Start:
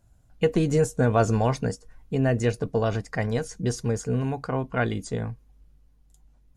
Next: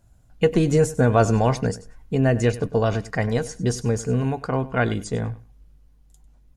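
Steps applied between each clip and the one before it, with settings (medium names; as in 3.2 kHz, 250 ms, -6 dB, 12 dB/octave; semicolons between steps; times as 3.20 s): feedback delay 98 ms, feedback 18%, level -17.5 dB; trim +3.5 dB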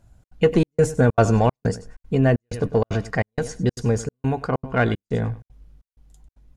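treble shelf 7.1 kHz -7.5 dB; in parallel at -8 dB: saturation -19.5 dBFS, distortion -9 dB; on the sum: trance gate "xxx.xxxx..x" 191 bpm -60 dB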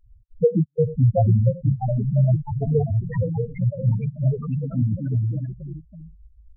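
square wave that keeps the level; loudest bins only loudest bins 2; ever faster or slower copies 771 ms, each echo +2 st, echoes 3, each echo -6 dB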